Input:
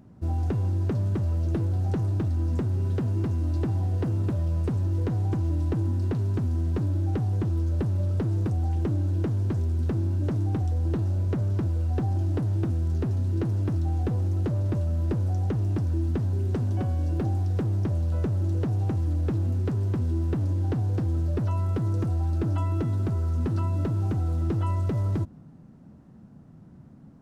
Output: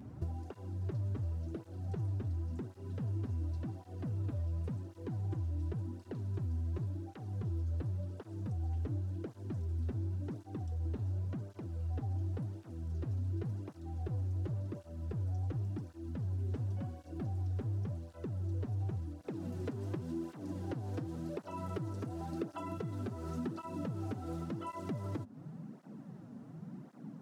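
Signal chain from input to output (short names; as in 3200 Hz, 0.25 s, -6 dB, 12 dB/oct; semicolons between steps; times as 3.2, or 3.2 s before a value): HPF 40 Hz 24 dB/oct, from 19.21 s 140 Hz; compressor 10:1, threshold -39 dBFS, peak gain reduction 17 dB; tape flanging out of phase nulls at 0.91 Hz, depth 6.4 ms; gain +5.5 dB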